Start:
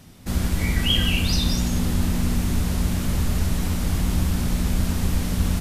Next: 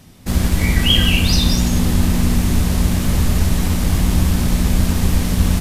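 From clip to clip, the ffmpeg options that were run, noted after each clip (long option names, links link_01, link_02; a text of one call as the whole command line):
ffmpeg -i in.wav -filter_complex "[0:a]bandreject=frequency=1400:width=21,asplit=2[link_01][link_02];[link_02]aeval=exprs='sgn(val(0))*max(abs(val(0))-0.015,0)':channel_layout=same,volume=-3.5dB[link_03];[link_01][link_03]amix=inputs=2:normalize=0,volume=2.5dB" out.wav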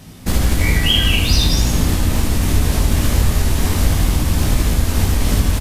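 ffmpeg -i in.wav -af "acompressor=threshold=-16dB:ratio=6,aecho=1:1:19|76:0.631|0.596,volume=4dB" out.wav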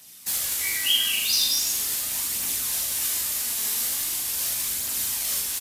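ffmpeg -i in.wav -filter_complex "[0:a]aderivative,aphaser=in_gain=1:out_gain=1:delay=4.8:decay=0.34:speed=0.41:type=triangular,asplit=2[link_01][link_02];[link_02]adelay=41,volume=-5.5dB[link_03];[link_01][link_03]amix=inputs=2:normalize=0" out.wav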